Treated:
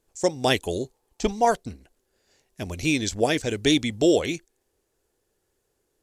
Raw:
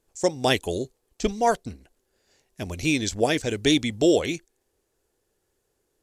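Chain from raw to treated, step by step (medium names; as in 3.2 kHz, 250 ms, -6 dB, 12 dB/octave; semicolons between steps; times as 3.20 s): 0.83–1.45 s: peaking EQ 870 Hz +10.5 dB 0.42 oct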